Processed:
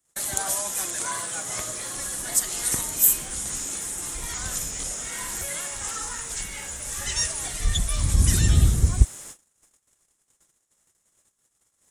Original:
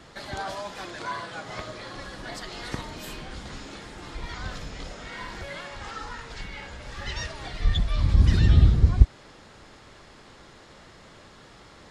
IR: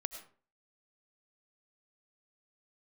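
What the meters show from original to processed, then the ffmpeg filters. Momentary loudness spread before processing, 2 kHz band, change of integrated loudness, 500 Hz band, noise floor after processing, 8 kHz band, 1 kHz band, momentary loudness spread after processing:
19 LU, +1.0 dB, +2.5 dB, -1.5 dB, -72 dBFS, n/a, -0.5 dB, 11 LU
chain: -af "agate=range=-36dB:threshold=-45dB:ratio=16:detection=peak,highshelf=f=2.8k:g=8.5,aexciter=amount=11.3:drive=7.9:freq=6.8k,volume=-1.5dB"

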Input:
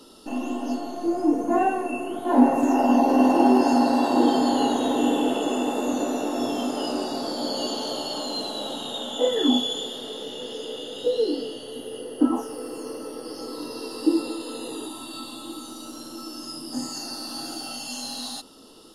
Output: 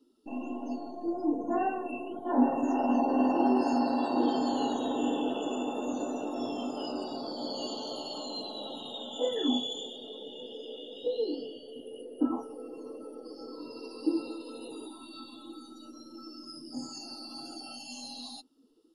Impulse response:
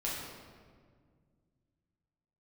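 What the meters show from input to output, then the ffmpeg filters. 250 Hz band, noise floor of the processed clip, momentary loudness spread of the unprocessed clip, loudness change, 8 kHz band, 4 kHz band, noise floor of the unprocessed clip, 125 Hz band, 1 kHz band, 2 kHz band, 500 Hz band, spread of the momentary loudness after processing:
-8.0 dB, -50 dBFS, 17 LU, -8.0 dB, -13.0 dB, -8.5 dB, -40 dBFS, -8.5 dB, -8.0 dB, -9.5 dB, -8.0 dB, 18 LU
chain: -af "afftdn=nr=20:nf=-38,volume=-8dB"

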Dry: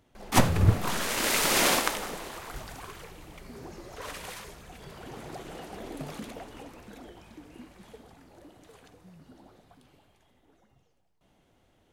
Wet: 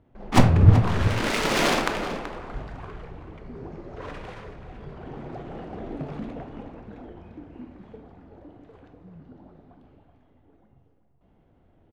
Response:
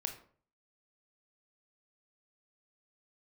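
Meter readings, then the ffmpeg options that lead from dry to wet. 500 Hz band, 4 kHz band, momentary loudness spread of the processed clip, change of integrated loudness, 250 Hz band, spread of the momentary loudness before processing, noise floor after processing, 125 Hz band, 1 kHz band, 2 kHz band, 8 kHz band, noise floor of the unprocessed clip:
+4.5 dB, -1.0 dB, 24 LU, +4.5 dB, +6.5 dB, 24 LU, -62 dBFS, +8.5 dB, +2.5 dB, +1.5 dB, -7.5 dB, -68 dBFS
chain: -filter_complex "[0:a]adynamicsmooth=sensitivity=3:basefreq=2k,asplit=2[a][b];[b]adelay=379,volume=-10dB,highshelf=f=4k:g=-8.53[c];[a][c]amix=inputs=2:normalize=0,asplit=2[d][e];[1:a]atrim=start_sample=2205,lowshelf=f=470:g=8[f];[e][f]afir=irnorm=-1:irlink=0,volume=5dB[g];[d][g]amix=inputs=2:normalize=0,volume=-7dB"

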